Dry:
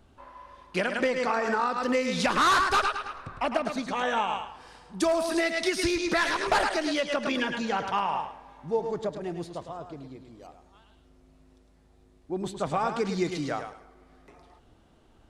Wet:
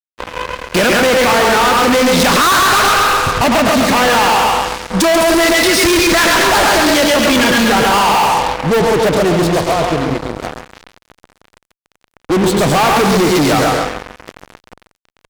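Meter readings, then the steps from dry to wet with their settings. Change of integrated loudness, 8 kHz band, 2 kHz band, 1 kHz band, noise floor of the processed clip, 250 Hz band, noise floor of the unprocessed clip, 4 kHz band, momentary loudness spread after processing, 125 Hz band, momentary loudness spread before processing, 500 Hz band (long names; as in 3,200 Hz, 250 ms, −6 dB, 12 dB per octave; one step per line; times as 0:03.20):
+16.0 dB, +22.0 dB, +16.5 dB, +16.0 dB, −77 dBFS, +17.0 dB, −60 dBFS, +19.0 dB, 9 LU, +20.0 dB, 15 LU, +16.0 dB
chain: steady tone 500 Hz −53 dBFS
repeating echo 136 ms, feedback 41%, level −5 dB
fuzz pedal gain 41 dB, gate −43 dBFS
level +3.5 dB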